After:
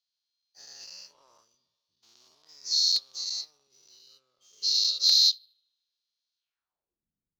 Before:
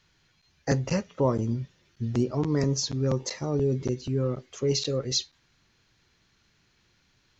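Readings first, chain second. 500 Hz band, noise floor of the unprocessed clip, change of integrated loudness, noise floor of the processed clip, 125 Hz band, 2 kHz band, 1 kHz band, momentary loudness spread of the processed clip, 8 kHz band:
under -35 dB, -68 dBFS, +5.0 dB, under -85 dBFS, under -40 dB, under -10 dB, under -20 dB, 18 LU, no reading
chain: every event in the spectrogram widened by 240 ms; on a send: bucket-brigade echo 75 ms, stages 2048, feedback 76%, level -21 dB; on the sum: added noise brown -55 dBFS; ten-band graphic EQ 125 Hz -8 dB, 250 Hz -10 dB, 500 Hz -7 dB, 2 kHz -12 dB; band-pass sweep 4.3 kHz -> 210 Hz, 6.37–7.05 s; waveshaping leveller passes 1; dynamic bell 4.3 kHz, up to +6 dB, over -37 dBFS, Q 4.7; crackling interface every 0.71 s, samples 128, repeat, from 0.83 s; upward expansion 1.5:1, over -40 dBFS; trim -2.5 dB

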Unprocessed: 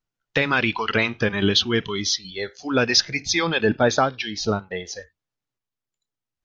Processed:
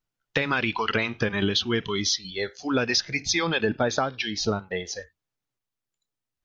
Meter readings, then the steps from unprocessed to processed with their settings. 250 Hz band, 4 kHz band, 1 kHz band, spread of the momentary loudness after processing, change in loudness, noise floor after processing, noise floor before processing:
-3.5 dB, -4.0 dB, -4.0 dB, 8 LU, -4.0 dB, under -85 dBFS, under -85 dBFS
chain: compression, threshold -20 dBFS, peak gain reduction 8 dB

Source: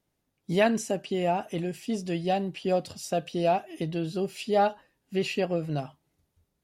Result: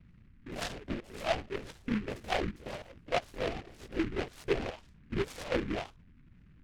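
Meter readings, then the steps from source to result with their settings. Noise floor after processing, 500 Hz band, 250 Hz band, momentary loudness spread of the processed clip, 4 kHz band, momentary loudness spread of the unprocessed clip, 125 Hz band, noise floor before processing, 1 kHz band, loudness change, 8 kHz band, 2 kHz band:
-58 dBFS, -8.5 dB, -7.0 dB, 11 LU, -3.5 dB, 8 LU, -8.5 dB, -79 dBFS, -9.5 dB, -7.5 dB, -9.0 dB, -3.0 dB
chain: spectrogram pixelated in time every 50 ms; peak limiter -20 dBFS, peak gain reduction 7.5 dB; wah-wah 1.9 Hz 230–1600 Hz, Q 2.8; hum 60 Hz, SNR 21 dB; LPC vocoder at 8 kHz whisper; delay time shaken by noise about 1.7 kHz, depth 0.14 ms; trim +3.5 dB

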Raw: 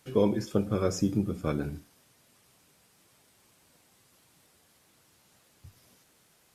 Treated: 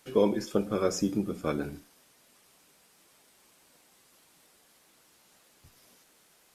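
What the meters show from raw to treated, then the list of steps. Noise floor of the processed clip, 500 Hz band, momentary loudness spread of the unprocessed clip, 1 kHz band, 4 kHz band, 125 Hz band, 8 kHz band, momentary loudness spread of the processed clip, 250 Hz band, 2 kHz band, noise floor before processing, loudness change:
-63 dBFS, +1.0 dB, 9 LU, +2.0 dB, +2.0 dB, -6.0 dB, +2.0 dB, 11 LU, -1.0 dB, +2.0 dB, -65 dBFS, -0.5 dB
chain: peaking EQ 100 Hz -13.5 dB 1.3 oct; trim +2 dB

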